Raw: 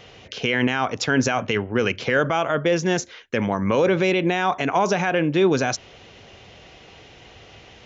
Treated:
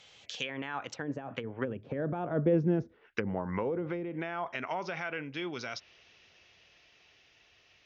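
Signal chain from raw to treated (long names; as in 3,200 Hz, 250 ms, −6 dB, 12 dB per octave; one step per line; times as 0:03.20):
source passing by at 0:02.47, 27 m/s, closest 7.2 metres
tilt shelving filter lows −7.5 dB, about 1,200 Hz
treble cut that deepens with the level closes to 340 Hz, closed at −30.5 dBFS
level +6 dB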